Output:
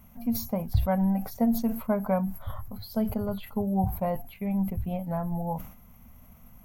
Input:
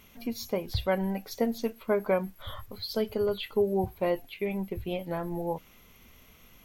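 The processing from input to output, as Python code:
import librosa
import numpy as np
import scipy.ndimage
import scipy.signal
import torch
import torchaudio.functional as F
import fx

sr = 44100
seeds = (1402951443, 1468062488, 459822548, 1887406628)

y = fx.curve_eq(x, sr, hz=(240.0, 350.0, 710.0, 3500.0, 14000.0), db=(0, -21, -2, -22, -4))
y = fx.sustainer(y, sr, db_per_s=100.0)
y = y * 10.0 ** (6.5 / 20.0)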